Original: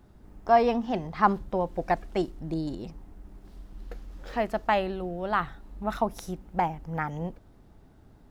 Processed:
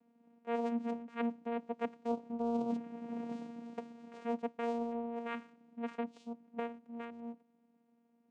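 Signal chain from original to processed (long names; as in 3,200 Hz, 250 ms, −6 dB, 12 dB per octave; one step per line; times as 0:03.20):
source passing by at 0:03.22, 17 m/s, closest 3.1 metres
high-pass filter 160 Hz 24 dB per octave
reversed playback
downward compressor 12 to 1, threshold −46 dBFS, peak gain reduction 11.5 dB
reversed playback
channel vocoder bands 4, saw 234 Hz
level +15.5 dB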